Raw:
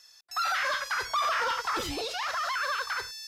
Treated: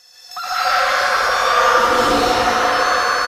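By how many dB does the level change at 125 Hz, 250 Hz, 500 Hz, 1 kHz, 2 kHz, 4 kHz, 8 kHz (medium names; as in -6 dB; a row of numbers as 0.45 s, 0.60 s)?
+14.5 dB, +18.0 dB, +19.5 dB, +15.0 dB, +13.0 dB, +12.0 dB, +12.5 dB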